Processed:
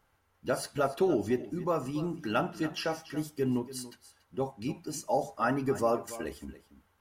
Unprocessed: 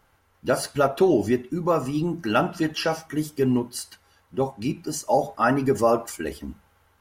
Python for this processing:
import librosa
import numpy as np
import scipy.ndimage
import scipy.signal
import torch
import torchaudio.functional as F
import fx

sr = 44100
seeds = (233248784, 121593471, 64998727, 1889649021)

y = x + 10.0 ** (-15.5 / 20.0) * np.pad(x, (int(285 * sr / 1000.0), 0))[:len(x)]
y = F.gain(torch.from_numpy(y), -8.0).numpy()